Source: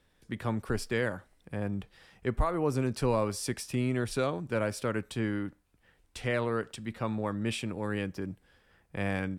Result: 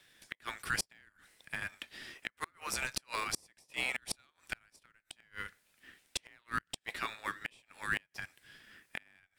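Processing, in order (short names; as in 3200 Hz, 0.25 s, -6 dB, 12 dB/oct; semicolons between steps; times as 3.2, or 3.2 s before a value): HPF 1500 Hz 24 dB/oct; flipped gate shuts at -31 dBFS, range -35 dB; in parallel at -10 dB: sample-and-hold 29×; on the sum: gain +10 dB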